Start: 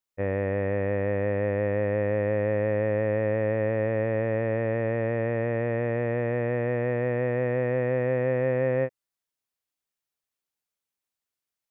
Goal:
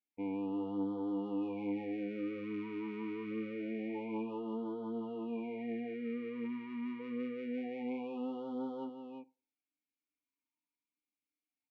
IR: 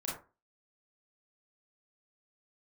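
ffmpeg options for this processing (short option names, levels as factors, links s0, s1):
-filter_complex "[0:a]bandreject=f=2000:w=13,aecho=1:1:4.2:0.81,asoftclip=type=tanh:threshold=0.0631,aeval=exprs='0.0631*(cos(1*acos(clip(val(0)/0.0631,-1,1)))-cos(1*PI/2))+0.00112*(cos(5*acos(clip(val(0)/0.0631,-1,1)))-cos(5*PI/2))':c=same,asplit=3[s0][s1][s2];[s0]bandpass=f=300:t=q:w=8,volume=1[s3];[s1]bandpass=f=870:t=q:w=8,volume=0.501[s4];[s2]bandpass=f=2240:t=q:w=8,volume=0.355[s5];[s3][s4][s5]amix=inputs=3:normalize=0,aecho=1:1:344:0.447,asplit=2[s6][s7];[1:a]atrim=start_sample=2205[s8];[s7][s8]afir=irnorm=-1:irlink=0,volume=0.0841[s9];[s6][s9]amix=inputs=2:normalize=0,afftfilt=real='re*(1-between(b*sr/1024,630*pow(2100/630,0.5+0.5*sin(2*PI*0.26*pts/sr))/1.41,630*pow(2100/630,0.5+0.5*sin(2*PI*0.26*pts/sr))*1.41))':imag='im*(1-between(b*sr/1024,630*pow(2100/630,0.5+0.5*sin(2*PI*0.26*pts/sr))/1.41,630*pow(2100/630,0.5+0.5*sin(2*PI*0.26*pts/sr))*1.41))':win_size=1024:overlap=0.75,volume=1.88"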